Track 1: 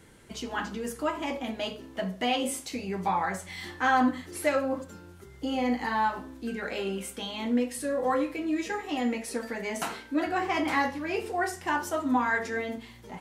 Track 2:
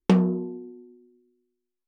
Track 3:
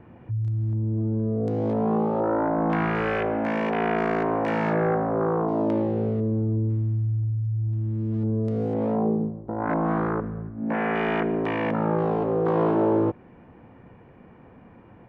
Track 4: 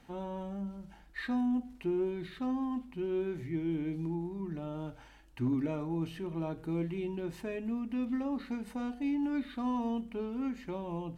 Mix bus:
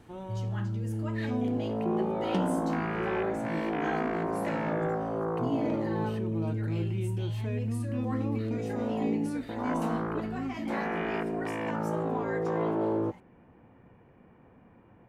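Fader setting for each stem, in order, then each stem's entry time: -13.0, -12.0, -7.5, -1.5 dB; 0.00, 2.25, 0.00, 0.00 s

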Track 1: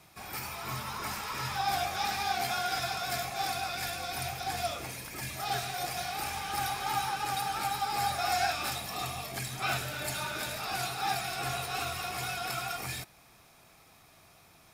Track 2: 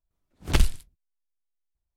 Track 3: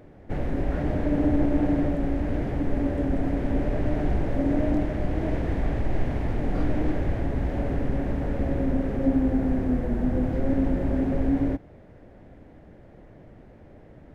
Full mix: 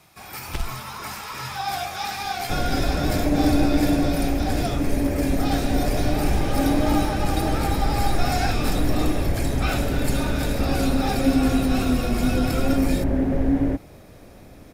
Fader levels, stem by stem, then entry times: +3.0, -8.5, +3.0 dB; 0.00, 0.00, 2.20 s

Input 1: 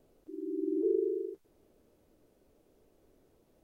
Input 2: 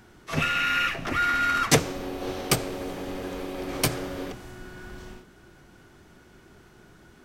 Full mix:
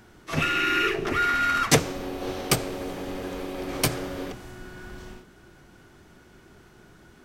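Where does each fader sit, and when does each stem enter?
-1.0, +0.5 dB; 0.00, 0.00 s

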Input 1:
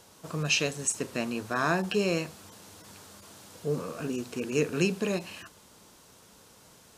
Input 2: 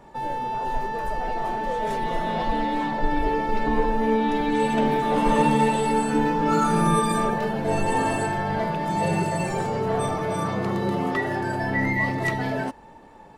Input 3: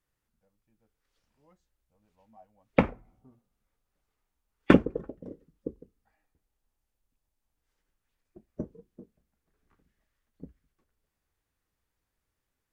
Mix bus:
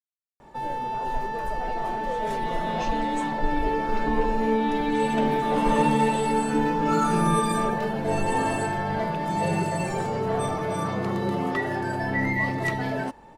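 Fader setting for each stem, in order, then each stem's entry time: -17.0 dB, -1.5 dB, off; 2.30 s, 0.40 s, off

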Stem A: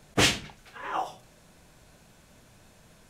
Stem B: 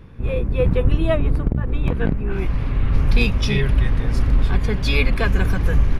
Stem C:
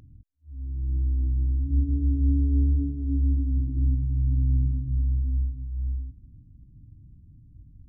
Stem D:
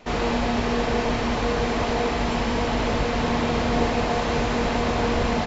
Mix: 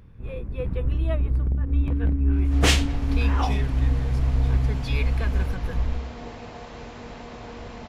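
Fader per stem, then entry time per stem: +1.0, -11.5, +0.5, -16.5 dB; 2.45, 0.00, 0.00, 2.45 s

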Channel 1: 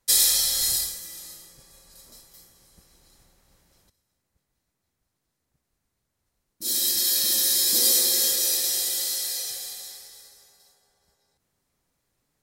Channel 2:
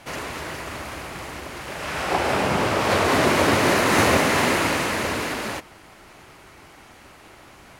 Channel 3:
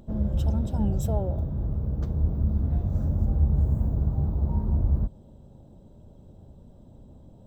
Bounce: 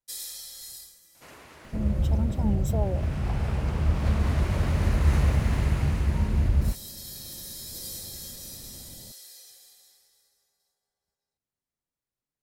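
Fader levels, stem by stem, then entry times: -18.5, -17.5, +0.5 dB; 0.00, 1.15, 1.65 s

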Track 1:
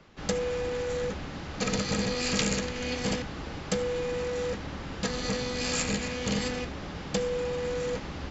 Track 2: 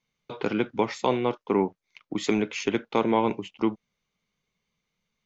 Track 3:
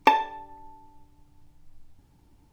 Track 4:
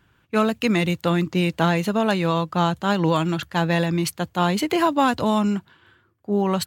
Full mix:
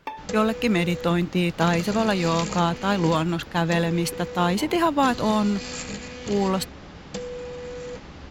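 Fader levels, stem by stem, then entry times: -4.0, -17.5, -15.5, -1.5 dB; 0.00, 1.45, 0.00, 0.00 s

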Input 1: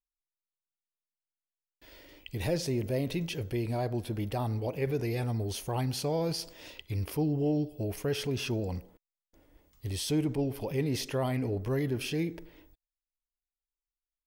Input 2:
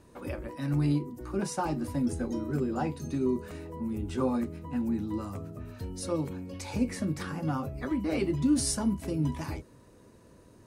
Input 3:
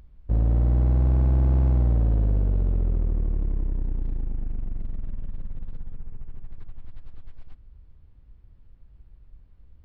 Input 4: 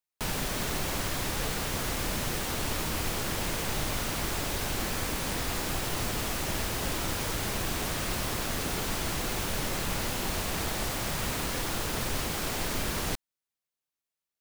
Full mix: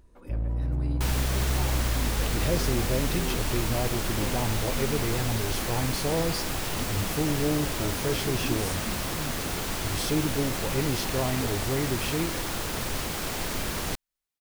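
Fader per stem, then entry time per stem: +1.5, -9.5, -8.0, +0.5 dB; 0.00, 0.00, 0.00, 0.80 s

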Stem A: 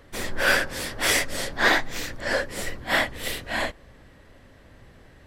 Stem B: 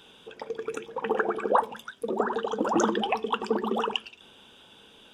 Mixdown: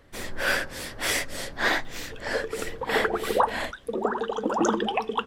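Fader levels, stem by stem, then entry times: -4.5, +0.5 dB; 0.00, 1.85 s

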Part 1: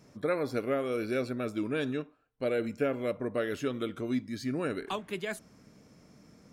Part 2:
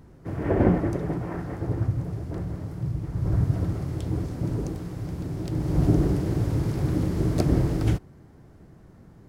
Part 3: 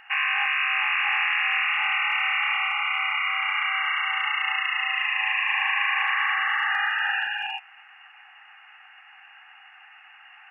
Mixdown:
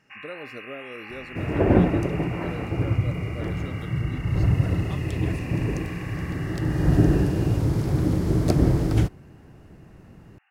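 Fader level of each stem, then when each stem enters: -8.5, +2.5, -18.0 dB; 0.00, 1.10, 0.00 s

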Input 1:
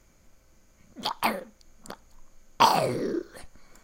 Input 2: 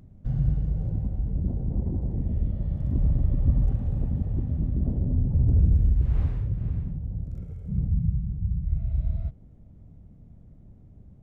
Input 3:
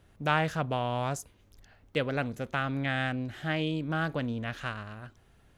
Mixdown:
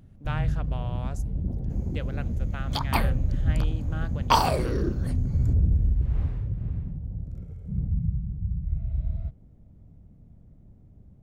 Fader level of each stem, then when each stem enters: -1.0, -2.0, -9.0 dB; 1.70, 0.00, 0.00 s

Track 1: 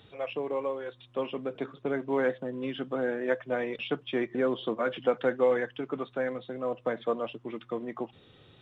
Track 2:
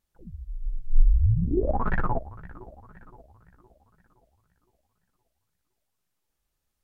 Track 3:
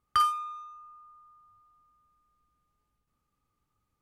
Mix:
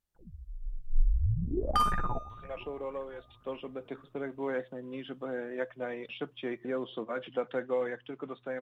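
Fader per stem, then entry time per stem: -6.5, -7.5, -3.0 dB; 2.30, 0.00, 1.60 s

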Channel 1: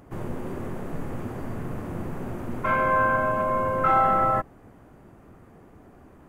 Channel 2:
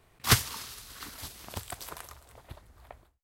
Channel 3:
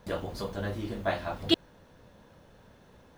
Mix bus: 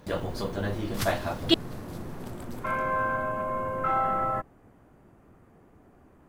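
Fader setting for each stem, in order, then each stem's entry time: -6.0, -11.5, +2.5 dB; 0.00, 0.70, 0.00 s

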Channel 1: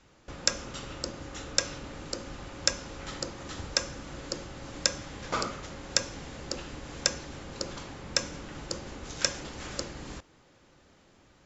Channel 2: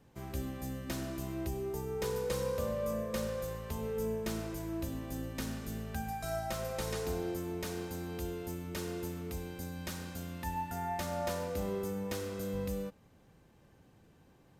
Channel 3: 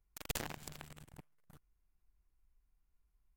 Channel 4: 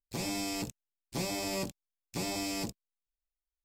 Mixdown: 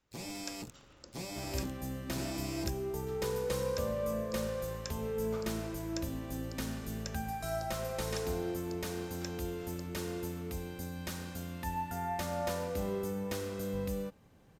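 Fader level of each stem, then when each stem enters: -18.5, +0.5, -19.5, -7.5 dB; 0.00, 1.20, 0.00, 0.00 s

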